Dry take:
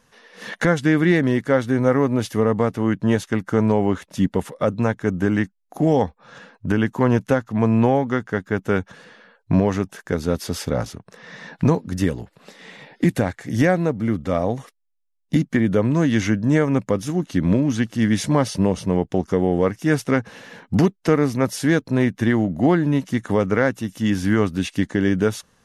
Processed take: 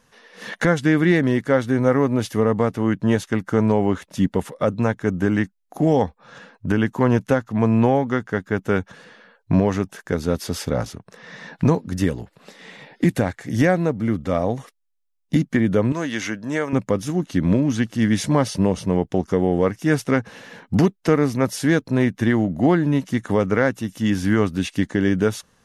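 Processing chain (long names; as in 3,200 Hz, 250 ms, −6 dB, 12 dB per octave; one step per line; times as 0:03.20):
0:15.92–0:16.73: high-pass filter 640 Hz 6 dB per octave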